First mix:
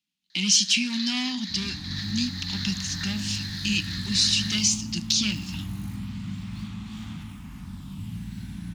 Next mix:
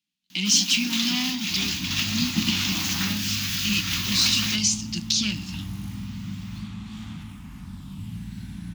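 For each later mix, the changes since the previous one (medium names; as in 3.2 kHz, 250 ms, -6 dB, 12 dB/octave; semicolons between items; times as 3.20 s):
first sound: remove two resonant band-passes 2.7 kHz, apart 1.2 oct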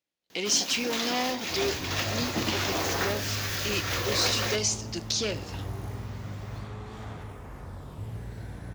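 master: remove FFT filter 130 Hz 0 dB, 190 Hz +14 dB, 300 Hz 0 dB, 460 Hz -29 dB, 860 Hz -7 dB, 1.2 kHz -4 dB, 1.8 kHz -3 dB, 2.8 kHz +8 dB, 5.8 kHz +5 dB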